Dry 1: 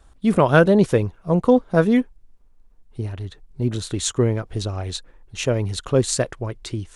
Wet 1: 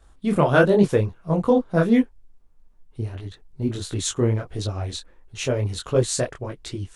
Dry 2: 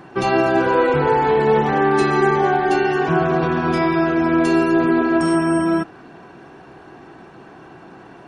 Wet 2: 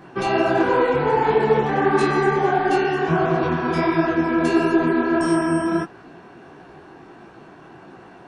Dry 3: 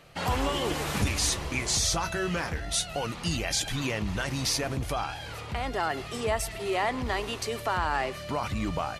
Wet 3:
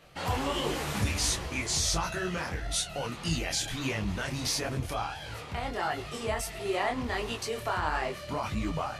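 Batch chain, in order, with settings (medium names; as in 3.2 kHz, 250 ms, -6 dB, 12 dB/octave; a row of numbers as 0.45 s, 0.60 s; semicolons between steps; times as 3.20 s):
detune thickener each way 52 cents; trim +1.5 dB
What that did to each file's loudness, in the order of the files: -2.0 LU, -2.0 LU, -2.0 LU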